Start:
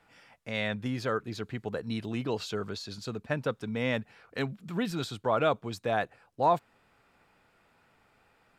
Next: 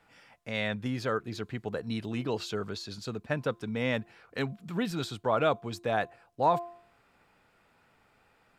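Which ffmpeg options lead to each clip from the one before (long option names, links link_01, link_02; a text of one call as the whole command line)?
ffmpeg -i in.wav -af "bandreject=frequency=345.7:width_type=h:width=4,bandreject=frequency=691.4:width_type=h:width=4,bandreject=frequency=1037.1:width_type=h:width=4" out.wav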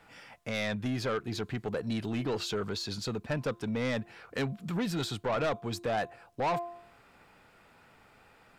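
ffmpeg -i in.wav -filter_complex "[0:a]asplit=2[link_01][link_02];[link_02]acompressor=threshold=-37dB:ratio=6,volume=0dB[link_03];[link_01][link_03]amix=inputs=2:normalize=0,asoftclip=type=tanh:threshold=-25.5dB" out.wav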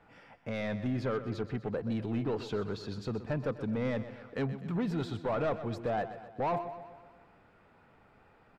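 ffmpeg -i in.wav -filter_complex "[0:a]lowpass=frequency=1100:poles=1,asplit=2[link_01][link_02];[link_02]aecho=0:1:126|252|378|504|630|756:0.224|0.125|0.0702|0.0393|0.022|0.0123[link_03];[link_01][link_03]amix=inputs=2:normalize=0" out.wav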